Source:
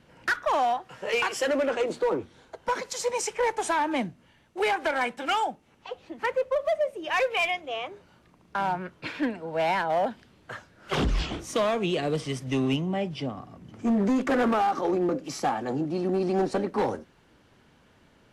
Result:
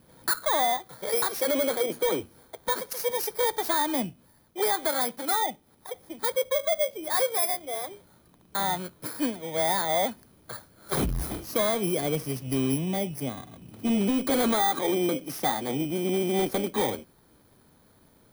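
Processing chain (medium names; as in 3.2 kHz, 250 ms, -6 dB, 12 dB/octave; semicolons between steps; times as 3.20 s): bit-reversed sample order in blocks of 16 samples; transformer saturation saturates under 100 Hz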